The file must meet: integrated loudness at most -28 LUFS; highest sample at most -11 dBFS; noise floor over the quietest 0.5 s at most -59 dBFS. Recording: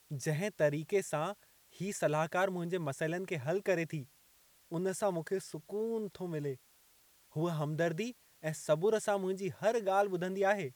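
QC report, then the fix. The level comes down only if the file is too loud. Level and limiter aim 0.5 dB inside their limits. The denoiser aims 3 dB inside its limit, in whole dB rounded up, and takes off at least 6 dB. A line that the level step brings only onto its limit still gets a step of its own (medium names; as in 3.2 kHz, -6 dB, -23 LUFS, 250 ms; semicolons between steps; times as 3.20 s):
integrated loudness -35.0 LUFS: pass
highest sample -16.0 dBFS: pass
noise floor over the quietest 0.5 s -66 dBFS: pass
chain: none needed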